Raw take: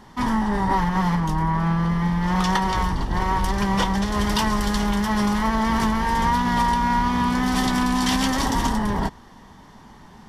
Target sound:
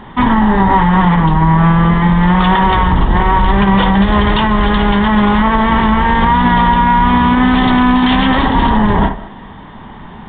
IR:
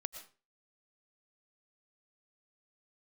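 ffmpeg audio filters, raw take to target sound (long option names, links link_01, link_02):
-filter_complex "[0:a]asplit=2[link_01][link_02];[1:a]atrim=start_sample=2205,lowpass=2200,adelay=56[link_03];[link_02][link_03]afir=irnorm=-1:irlink=0,volume=-7.5dB[link_04];[link_01][link_04]amix=inputs=2:normalize=0,alimiter=level_in=14dB:limit=-1dB:release=50:level=0:latency=1,volume=-1dB" -ar 8000 -c:a pcm_mulaw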